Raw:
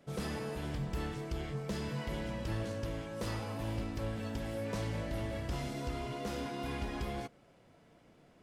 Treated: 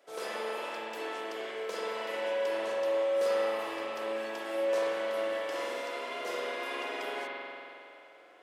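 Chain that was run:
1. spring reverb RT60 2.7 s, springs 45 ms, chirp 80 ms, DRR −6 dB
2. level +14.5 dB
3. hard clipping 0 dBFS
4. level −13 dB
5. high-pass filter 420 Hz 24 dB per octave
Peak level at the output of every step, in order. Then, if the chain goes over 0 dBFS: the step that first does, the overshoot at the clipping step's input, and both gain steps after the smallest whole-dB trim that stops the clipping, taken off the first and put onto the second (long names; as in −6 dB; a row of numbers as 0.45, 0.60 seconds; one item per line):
−16.0, −1.5, −1.5, −14.5, −20.0 dBFS
no step passes full scale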